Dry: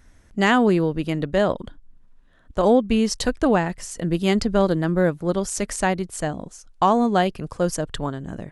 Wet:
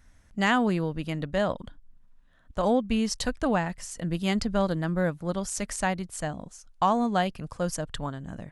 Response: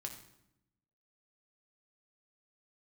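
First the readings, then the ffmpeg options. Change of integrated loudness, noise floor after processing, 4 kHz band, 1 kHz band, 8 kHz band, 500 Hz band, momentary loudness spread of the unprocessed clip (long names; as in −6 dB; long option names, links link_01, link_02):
−6.5 dB, −58 dBFS, −4.5 dB, −5.0 dB, −4.5 dB, −8.0 dB, 12 LU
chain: -af "equalizer=frequency=380:width_type=o:width=0.74:gain=-7.5,volume=-4.5dB"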